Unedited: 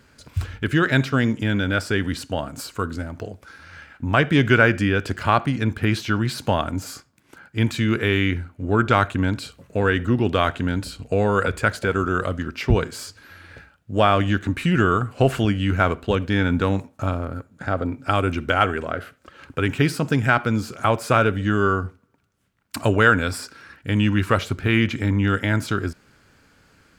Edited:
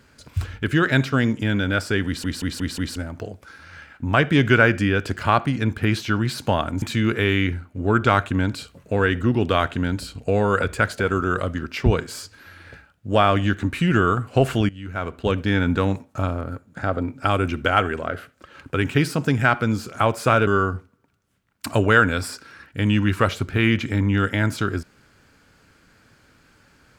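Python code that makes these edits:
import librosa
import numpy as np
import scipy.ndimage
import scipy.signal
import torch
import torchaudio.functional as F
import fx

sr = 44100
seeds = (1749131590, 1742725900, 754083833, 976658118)

y = fx.edit(x, sr, fx.stutter_over(start_s=2.06, slice_s=0.18, count=5),
    fx.cut(start_s=6.82, length_s=0.84),
    fx.fade_in_from(start_s=15.53, length_s=0.62, curve='qua', floor_db=-15.5),
    fx.cut(start_s=21.31, length_s=0.26), tone=tone)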